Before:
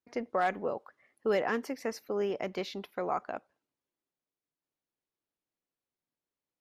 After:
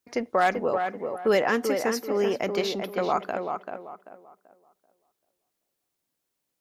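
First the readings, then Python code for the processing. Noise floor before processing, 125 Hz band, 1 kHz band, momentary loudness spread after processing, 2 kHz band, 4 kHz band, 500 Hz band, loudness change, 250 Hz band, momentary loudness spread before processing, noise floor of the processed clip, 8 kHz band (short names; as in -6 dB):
under -85 dBFS, +7.5 dB, +8.0 dB, 10 LU, +8.5 dB, +10.5 dB, +8.0 dB, +7.5 dB, +7.5 dB, 8 LU, -81 dBFS, +12.5 dB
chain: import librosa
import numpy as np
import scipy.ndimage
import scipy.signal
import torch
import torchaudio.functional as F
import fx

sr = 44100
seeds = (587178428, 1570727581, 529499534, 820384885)

y = fx.high_shelf(x, sr, hz=4300.0, db=8.5)
y = fx.echo_tape(y, sr, ms=387, feedback_pct=33, wet_db=-4, lp_hz=1800.0, drive_db=18.0, wow_cents=16)
y = y * librosa.db_to_amplitude(6.5)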